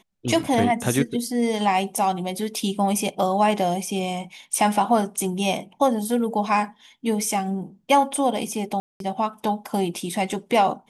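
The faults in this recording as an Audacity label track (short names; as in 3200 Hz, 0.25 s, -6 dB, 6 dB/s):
8.800000	9.000000	gap 0.202 s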